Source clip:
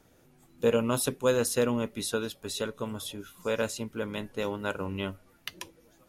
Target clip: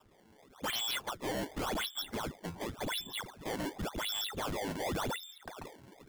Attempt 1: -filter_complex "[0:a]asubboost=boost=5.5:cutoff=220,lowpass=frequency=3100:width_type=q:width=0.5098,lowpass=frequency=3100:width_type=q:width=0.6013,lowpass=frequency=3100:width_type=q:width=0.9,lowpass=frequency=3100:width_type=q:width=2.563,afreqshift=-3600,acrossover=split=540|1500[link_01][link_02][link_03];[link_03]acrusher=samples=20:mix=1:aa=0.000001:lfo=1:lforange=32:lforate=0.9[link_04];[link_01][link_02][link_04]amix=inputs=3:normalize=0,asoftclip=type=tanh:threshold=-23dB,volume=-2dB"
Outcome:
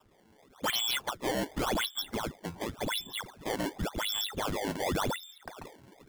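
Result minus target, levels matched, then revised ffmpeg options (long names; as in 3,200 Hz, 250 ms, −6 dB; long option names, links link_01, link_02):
soft clipping: distortion −6 dB
-filter_complex "[0:a]asubboost=boost=5.5:cutoff=220,lowpass=frequency=3100:width_type=q:width=0.5098,lowpass=frequency=3100:width_type=q:width=0.6013,lowpass=frequency=3100:width_type=q:width=0.9,lowpass=frequency=3100:width_type=q:width=2.563,afreqshift=-3600,acrossover=split=540|1500[link_01][link_02][link_03];[link_03]acrusher=samples=20:mix=1:aa=0.000001:lfo=1:lforange=32:lforate=0.9[link_04];[link_01][link_02][link_04]amix=inputs=3:normalize=0,asoftclip=type=tanh:threshold=-30.5dB,volume=-2dB"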